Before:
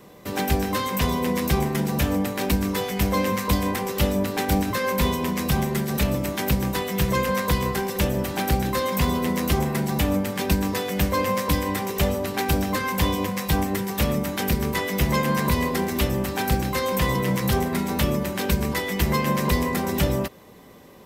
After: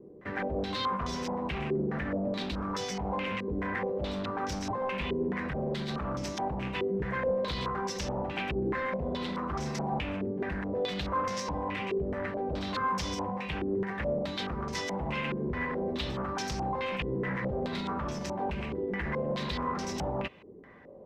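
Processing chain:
0:01.99–0:02.51: parametric band 210 Hz +8 dB 0.73 octaves
brickwall limiter −17.5 dBFS, peak gain reduction 9.5 dB
wave folding −21.5 dBFS
low-pass on a step sequencer 4.7 Hz 390–5,700 Hz
level −7.5 dB

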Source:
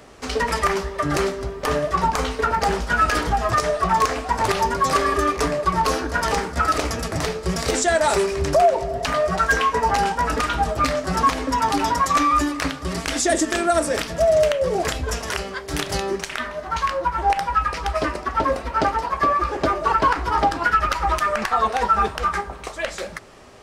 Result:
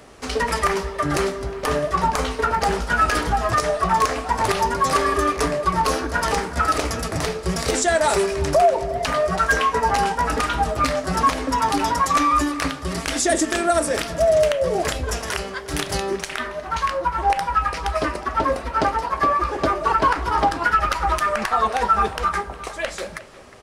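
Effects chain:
parametric band 10,000 Hz +5 dB 0.25 octaves
far-end echo of a speakerphone 360 ms, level −16 dB

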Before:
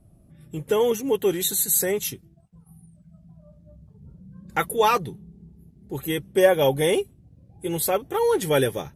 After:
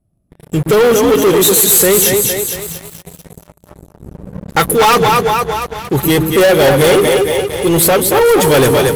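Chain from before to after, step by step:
echo with a time of its own for lows and highs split 360 Hz, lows 120 ms, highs 230 ms, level −6.5 dB
leveller curve on the samples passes 5

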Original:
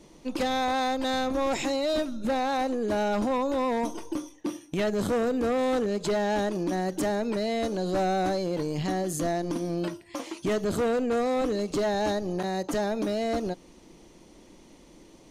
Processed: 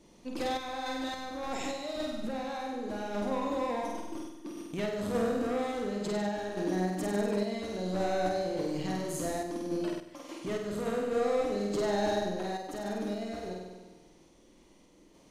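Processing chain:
flutter between parallel walls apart 8.4 metres, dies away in 1.2 s
sample-and-hold tremolo 3.5 Hz
level −6.5 dB

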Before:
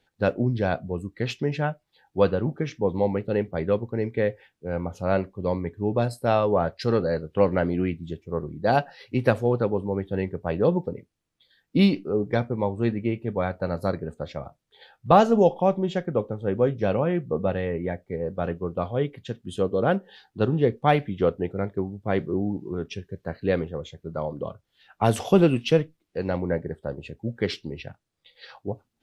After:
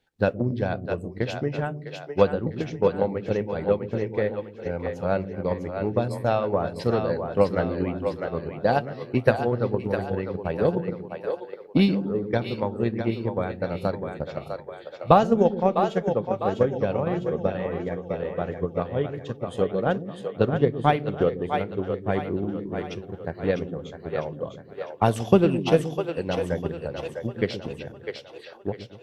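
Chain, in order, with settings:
echo with a time of its own for lows and highs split 400 Hz, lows 123 ms, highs 652 ms, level −5 dB
transient designer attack +7 dB, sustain −1 dB
level −4 dB

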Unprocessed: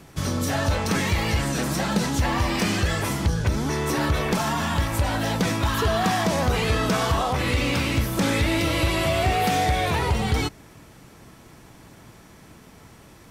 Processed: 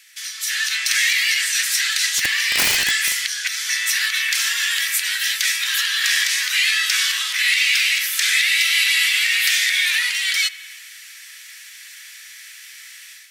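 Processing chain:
elliptic high-pass filter 1,800 Hz, stop band 70 dB
spring reverb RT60 1.4 s, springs 50 ms, chirp 35 ms, DRR 16 dB
0:02.14–0:03.16: wrap-around overflow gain 22 dB
in parallel at −1.5 dB: downward compressor, threshold −42 dBFS, peak gain reduction 15 dB
0:04.71–0:05.63: on the sum: high-shelf EQ 10,000 Hz +5 dB
automatic gain control gain up to 10 dB
level +1.5 dB

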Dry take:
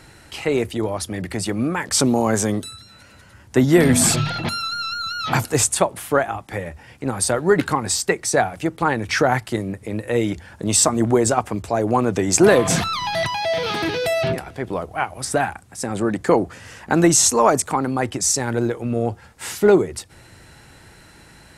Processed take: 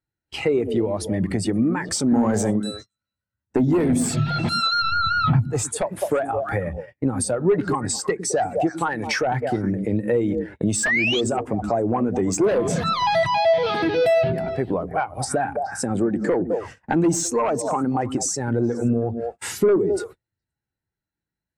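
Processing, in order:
on a send: echo through a band-pass that steps 105 ms, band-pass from 220 Hz, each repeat 1.4 octaves, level −6 dB
on the sum: noise gate −37 dBFS, range −26 dB
0:08.67–0:09.22: spectral tilt +2 dB per octave
0:10.83–0:11.21: sound drawn into the spectrogram rise 1,600–3,500 Hz −16 dBFS
sine wavefolder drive 9 dB, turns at −0.5 dBFS
0:04.82–0:05.53: bass and treble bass +12 dB, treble −10 dB
downward compressor 16 to 1, threshold −13 dBFS, peak gain reduction 18 dB
0:02.11–0:02.51: leveller curve on the samples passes 1
every bin expanded away from the loudest bin 1.5 to 1
level −7 dB

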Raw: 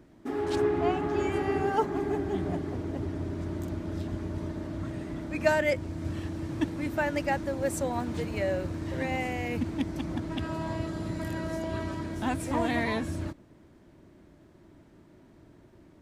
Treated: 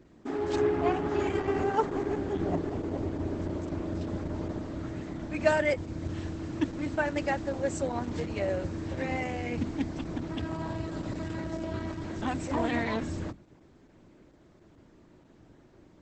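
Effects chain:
Butterworth low-pass 11,000 Hz 36 dB per octave
mains-hum notches 50/100/150/200/250 Hz
0:02.41–0:04.59: dynamic equaliser 550 Hz, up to +5 dB, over −48 dBFS, Q 0.73
Opus 10 kbit/s 48,000 Hz

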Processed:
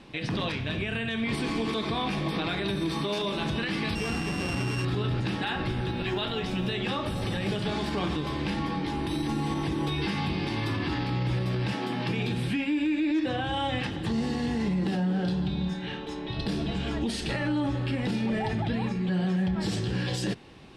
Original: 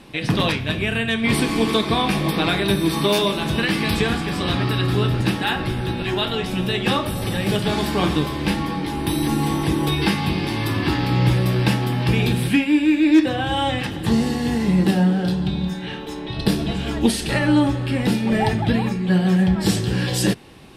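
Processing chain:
0:03.95–0:04.85: samples sorted by size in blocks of 16 samples
0:11.72–0:12.34: high-pass filter 230 Hz → 100 Hz 24 dB per octave
brickwall limiter −15.5 dBFS, peak gain reduction 11 dB
low-pass filter 6,600 Hz 12 dB per octave
0:05.90–0:06.72: floating-point word with a short mantissa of 6 bits
level −5 dB

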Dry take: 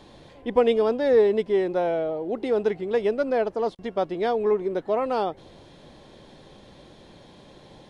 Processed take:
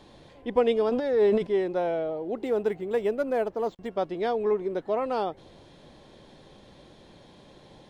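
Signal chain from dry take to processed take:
0:00.89–0:01.47: transient designer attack −11 dB, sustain +9 dB
0:02.43–0:03.91: linearly interpolated sample-rate reduction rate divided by 4×
level −3 dB

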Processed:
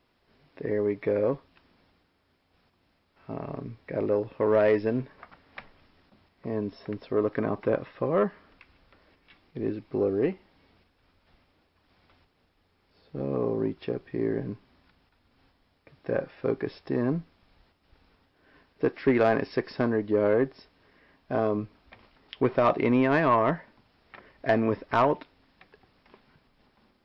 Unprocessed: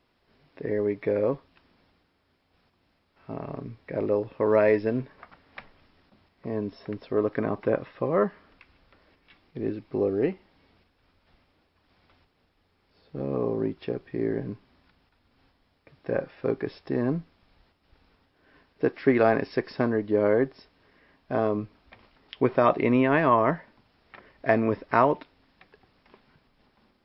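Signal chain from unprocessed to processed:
soft clipping −12 dBFS, distortion −19 dB

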